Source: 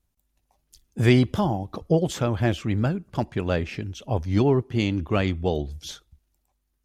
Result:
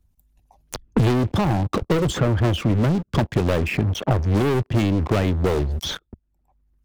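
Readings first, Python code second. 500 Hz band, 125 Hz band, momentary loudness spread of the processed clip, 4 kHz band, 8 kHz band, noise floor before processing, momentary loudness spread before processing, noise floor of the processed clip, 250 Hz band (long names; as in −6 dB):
+2.0 dB, +4.5 dB, 6 LU, +4.5 dB, +5.0 dB, −74 dBFS, 14 LU, −69 dBFS, +2.5 dB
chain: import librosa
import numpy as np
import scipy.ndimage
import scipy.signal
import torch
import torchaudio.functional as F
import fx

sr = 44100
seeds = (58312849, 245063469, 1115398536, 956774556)

y = fx.envelope_sharpen(x, sr, power=1.5)
y = fx.leveller(y, sr, passes=5)
y = fx.band_squash(y, sr, depth_pct=100)
y = y * librosa.db_to_amplitude(-8.5)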